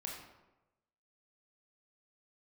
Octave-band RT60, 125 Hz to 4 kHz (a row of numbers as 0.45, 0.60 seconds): 1.1, 1.0, 1.1, 1.0, 0.80, 0.60 seconds